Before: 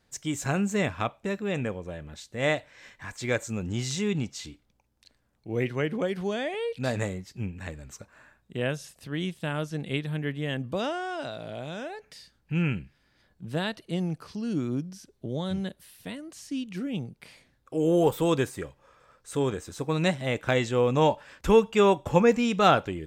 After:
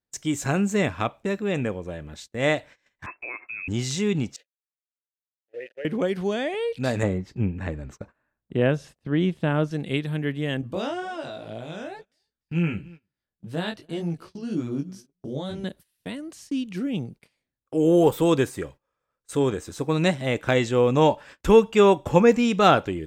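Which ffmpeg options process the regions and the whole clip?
ffmpeg -i in.wav -filter_complex "[0:a]asettb=1/sr,asplit=3[link_01][link_02][link_03];[link_01]atrim=end=3.064[link_04];[link_02]atrim=start=3.06:end=3.68,asetpts=PTS-STARTPTS,afade=type=in:duration=0.004:curve=qsin,afade=type=out:start_time=0.616:duration=0.004:curve=qsin,agate=range=-33dB:threshold=-44dB:ratio=3:release=100:detection=peak,acompressor=threshold=-33dB:ratio=10:attack=3.2:release=140:knee=1:detection=peak,lowpass=frequency=2300:width_type=q:width=0.5098,lowpass=frequency=2300:width_type=q:width=0.6013,lowpass=frequency=2300:width_type=q:width=0.9,lowpass=frequency=2300:width_type=q:width=2.563,afreqshift=-2700[link_05];[link_03]atrim=start=3.676[link_06];[link_04][link_05]acrossfade=duration=0.004:curve1=hsin:curve2=qsin[link_07];[link_07][link_06]acrossfade=duration=0.004:curve1=qsin:curve2=hsin,asettb=1/sr,asplit=3[link_08][link_09][link_10];[link_08]atrim=end=4.364[link_11];[link_09]atrim=start=4.36:end=5.85,asetpts=PTS-STARTPTS,afade=type=in:duration=0.004:curve=qsin,afade=type=out:start_time=1.486:duration=0.004:curve=qsin,equalizer=frequency=180:width=0.9:gain=-13,aeval=exprs='val(0)*gte(abs(val(0)),0.0141)':channel_layout=same,asplit=3[link_12][link_13][link_14];[link_12]bandpass=frequency=530:width_type=q:width=8,volume=0dB[link_15];[link_13]bandpass=frequency=1840:width_type=q:width=8,volume=-6dB[link_16];[link_14]bandpass=frequency=2480:width_type=q:width=8,volume=-9dB[link_17];[link_15][link_16][link_17]amix=inputs=3:normalize=0[link_18];[link_10]atrim=start=5.846[link_19];[link_11][link_18]acrossfade=duration=0.004:curve1=hsin:curve2=qsin[link_20];[link_20][link_19]acrossfade=duration=0.004:curve1=qsin:curve2=hsin,asettb=1/sr,asplit=3[link_21][link_22][link_23];[link_21]atrim=end=7.034[link_24];[link_22]atrim=start=7.03:end=9.71,asetpts=PTS-STARTPTS,afade=type=in:duration=0.004:curve=qsin,afade=type=out:start_time=2.676:duration=0.004:curve=qsin,lowpass=frequency=1400:poles=1,acontrast=28[link_25];[link_23]atrim=start=9.706[link_26];[link_24][link_25]acrossfade=duration=0.004:curve1=hsin:curve2=qsin[link_27];[link_27][link_26]acrossfade=duration=0.004:curve1=qsin:curve2=hsin,asettb=1/sr,asplit=3[link_28][link_29][link_30];[link_28]atrim=end=10.614[link_31];[link_29]atrim=start=10.61:end=15.64,asetpts=PTS-STARTPTS,afade=type=in:duration=0.004:curve=qsin,afade=type=out:start_time=5.026:duration=0.004:curve=qsin,flanger=delay=17.5:depth=4.1:speed=2,aecho=1:1:292:0.0794,atrim=end_sample=221823[link_32];[link_30]atrim=start=15.636[link_33];[link_31][link_32]acrossfade=duration=0.004:curve1=hsin:curve2=qsin[link_34];[link_34][link_33]acrossfade=duration=0.004:curve1=qsin:curve2=hsin,equalizer=frequency=320:width=1.4:gain=3,agate=range=-25dB:threshold=-45dB:ratio=16:detection=peak,volume=2.5dB" out.wav

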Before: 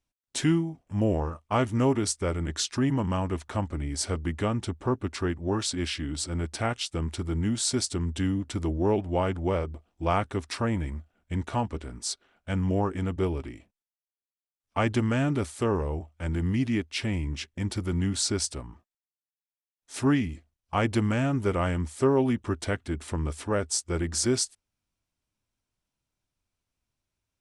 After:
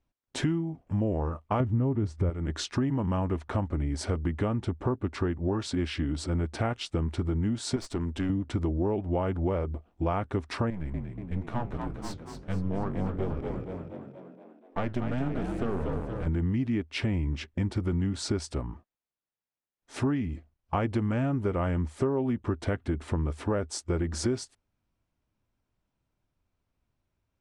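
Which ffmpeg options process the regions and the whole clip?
ffmpeg -i in.wav -filter_complex "[0:a]asettb=1/sr,asplit=3[link_01][link_02][link_03];[link_01]atrim=end=1.604[link_04];[link_02]atrim=start=1.6:end=2.3,asetpts=PTS-STARTPTS,afade=type=in:duration=0.004:curve=qsin,afade=type=out:start_time=0.696:duration=0.004:curve=qsin,highpass=59,aemphasis=mode=reproduction:type=riaa,acompressor=mode=upward:threshold=-20dB:ratio=2.5:attack=3.2:release=140:knee=2.83:detection=peak[link_05];[link_03]atrim=start=2.296[link_06];[link_04][link_05]acrossfade=duration=0.004:curve1=hsin:curve2=qsin[link_07];[link_07][link_06]acrossfade=duration=0.004:curve1=qsin:curve2=hsin,asettb=1/sr,asplit=3[link_08][link_09][link_10];[link_08]atrim=end=7.764[link_11];[link_09]atrim=start=7.76:end=8.3,asetpts=PTS-STARTPTS,afade=type=in:duration=0.004:curve=qsin,afade=type=out:start_time=0.536:duration=0.004:curve=qsin,lowshelf=frequency=230:gain=-9,aeval=exprs='(tanh(22.4*val(0)+0.35)-tanh(0.35))/22.4':channel_layout=same[link_12];[link_10]atrim=start=8.296[link_13];[link_11][link_12]acrossfade=duration=0.004:curve1=hsin:curve2=qsin[link_14];[link_14][link_13]acrossfade=duration=0.004:curve1=qsin:curve2=hsin,asettb=1/sr,asplit=3[link_15][link_16][link_17];[link_15]atrim=end=10.704[link_18];[link_16]atrim=start=10.7:end=16.27,asetpts=PTS-STARTPTS,afade=type=in:duration=0.004:curve=qsin,afade=type=out:start_time=5.566:duration=0.004:curve=qsin,aeval=exprs='if(lt(val(0),0),0.251*val(0),val(0))':channel_layout=same,asplit=8[link_19][link_20][link_21][link_22][link_23][link_24][link_25][link_26];[link_20]adelay=237,afreqshift=45,volume=-7dB[link_27];[link_21]adelay=474,afreqshift=90,volume=-11.7dB[link_28];[link_22]adelay=711,afreqshift=135,volume=-16.5dB[link_29];[link_23]adelay=948,afreqshift=180,volume=-21.2dB[link_30];[link_24]adelay=1185,afreqshift=225,volume=-25.9dB[link_31];[link_25]adelay=1422,afreqshift=270,volume=-30.7dB[link_32];[link_26]adelay=1659,afreqshift=315,volume=-35.4dB[link_33];[link_19][link_27][link_28][link_29][link_30][link_31][link_32][link_33]amix=inputs=8:normalize=0,atrim=end_sample=245637,flanger=delay=3.3:depth=9.7:regen=-76:speed=1.5:shape=triangular[link_34];[link_17]atrim=start=16.266[link_35];[link_18][link_34]acrossfade=duration=0.004:curve1=hsin:curve2=qsin[link_36];[link_36][link_35]acrossfade=duration=0.004:curve1=qsin:curve2=hsin,lowpass=frequency=1200:poles=1,acompressor=threshold=-32dB:ratio=6,volume=7dB" out.wav

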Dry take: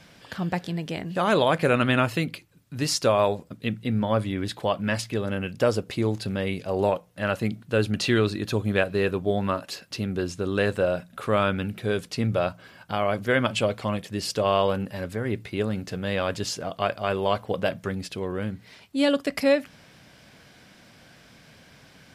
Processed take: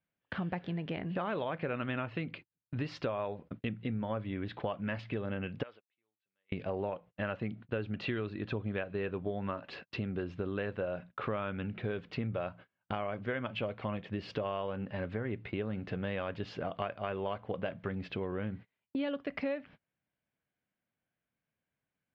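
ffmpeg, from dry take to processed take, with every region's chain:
ffmpeg -i in.wav -filter_complex "[0:a]asettb=1/sr,asplit=3[link_01][link_02][link_03];[link_01]atrim=end=5.634[link_04];[link_02]atrim=start=5.63:end=6.52,asetpts=PTS-STARTPTS,afade=type=in:duration=0.004:curve=qsin,afade=type=out:start_time=0.886:duration=0.004:curve=qsin,lowpass=frequency=3600:width=0.5412,lowpass=frequency=3600:width=1.3066,aderivative,bandreject=frequency=2800:width=27[link_05];[link_03]atrim=start=6.516[link_06];[link_04][link_05]acrossfade=duration=0.004:curve1=hsin:curve2=qsin[link_07];[link_07][link_06]acrossfade=duration=0.004:curve1=qsin:curve2=hsin,agate=range=-37dB:threshold=-40dB:ratio=16:detection=peak,lowpass=frequency=3000:width=0.5412,lowpass=frequency=3000:width=1.3066,acompressor=threshold=-33dB:ratio=6" out.wav

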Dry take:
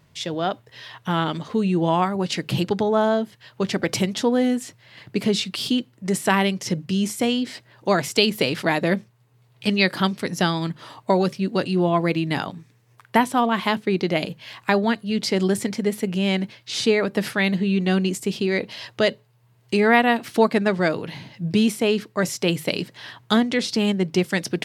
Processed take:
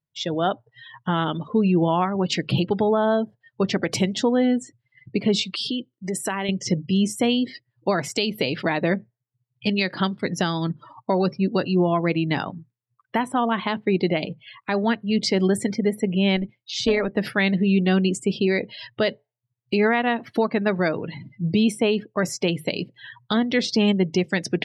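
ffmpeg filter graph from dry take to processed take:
ffmpeg -i in.wav -filter_complex "[0:a]asettb=1/sr,asplit=3[link_01][link_02][link_03];[link_01]atrim=end=5.424[link_04];[link_02]atrim=start=5.42:end=6.49,asetpts=PTS-STARTPTS,afade=type=in:duration=0.004:curve=qsin,afade=type=out:start_time=1.066:duration=0.004:curve=qsin,bass=frequency=250:gain=-5,treble=frequency=4000:gain=2,acompressor=threshold=-25dB:ratio=3:attack=3.2:release=140:knee=1:detection=peak[link_05];[link_03]atrim=start=6.486[link_06];[link_04][link_05]acrossfade=duration=0.004:curve1=hsin:curve2=qsin[link_07];[link_07][link_06]acrossfade=duration=0.004:curve1=qsin:curve2=hsin,asettb=1/sr,asplit=3[link_08][link_09][link_10];[link_08]atrim=end=16.364[link_11];[link_09]atrim=start=16.36:end=17.17,asetpts=PTS-STARTPTS,afade=type=in:duration=0.004:curve=qsin,afade=type=out:start_time=0.806:duration=0.004:curve=qsin,volume=11dB,asoftclip=hard,volume=-11dB,tremolo=f=180:d=0.519[link_12];[link_10]atrim=start=17.166[link_13];[link_11][link_12]acrossfade=duration=0.004:curve1=hsin:curve2=qsin[link_14];[link_14][link_13]acrossfade=duration=0.004:curve1=qsin:curve2=hsin,afftdn=noise_reduction=36:noise_floor=-35,alimiter=limit=-12dB:level=0:latency=1:release=251,volume=2dB" out.wav

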